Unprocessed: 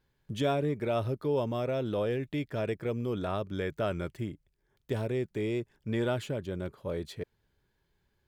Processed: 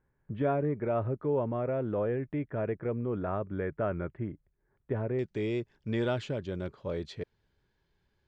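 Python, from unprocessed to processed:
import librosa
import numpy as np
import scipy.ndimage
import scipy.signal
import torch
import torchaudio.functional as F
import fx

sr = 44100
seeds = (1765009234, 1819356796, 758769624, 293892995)

y = fx.lowpass(x, sr, hz=fx.steps((0.0, 1900.0), (5.19, 6200.0)), slope=24)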